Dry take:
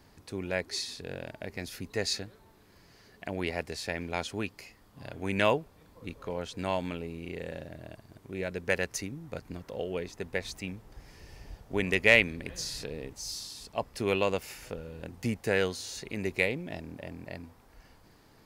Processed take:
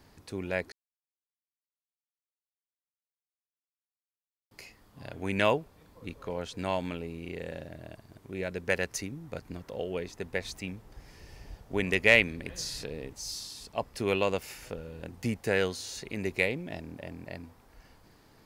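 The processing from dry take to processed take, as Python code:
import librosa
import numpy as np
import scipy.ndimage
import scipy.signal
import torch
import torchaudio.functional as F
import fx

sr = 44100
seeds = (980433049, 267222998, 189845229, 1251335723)

y = fx.edit(x, sr, fx.silence(start_s=0.72, length_s=3.79), tone=tone)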